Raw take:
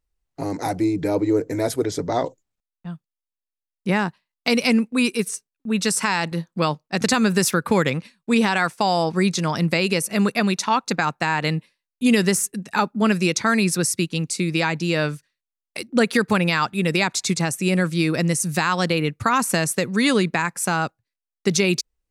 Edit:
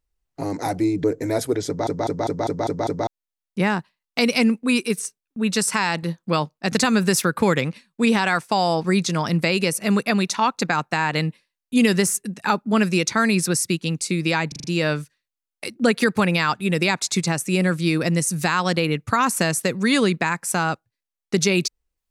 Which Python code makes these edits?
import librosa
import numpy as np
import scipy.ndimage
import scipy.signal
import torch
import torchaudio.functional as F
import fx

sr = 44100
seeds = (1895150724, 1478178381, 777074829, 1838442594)

y = fx.edit(x, sr, fx.cut(start_s=1.04, length_s=0.29),
    fx.stutter_over(start_s=1.96, slice_s=0.2, count=7),
    fx.stutter(start_s=14.77, slice_s=0.04, count=5), tone=tone)